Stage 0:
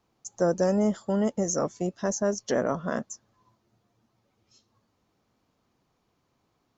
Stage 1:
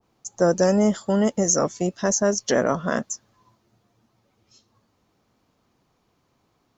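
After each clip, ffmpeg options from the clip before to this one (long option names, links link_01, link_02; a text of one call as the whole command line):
ffmpeg -i in.wav -af "adynamicequalizer=threshold=0.00891:dfrequency=1500:dqfactor=0.7:tfrequency=1500:tqfactor=0.7:attack=5:release=100:ratio=0.375:range=2.5:mode=boostabove:tftype=highshelf,volume=5dB" out.wav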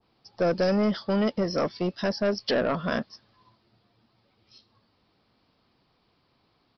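ffmpeg -i in.wav -af "crystalizer=i=3:c=0,aresample=11025,asoftclip=type=tanh:threshold=-16.5dB,aresample=44100,volume=-1.5dB" out.wav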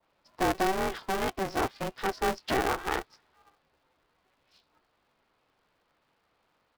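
ffmpeg -i in.wav -filter_complex "[0:a]acrossover=split=420 3200:gain=0.224 1 0.126[link_01][link_02][link_03];[link_01][link_02][link_03]amix=inputs=3:normalize=0,aeval=exprs='val(0)*sgn(sin(2*PI*190*n/s))':channel_layout=same" out.wav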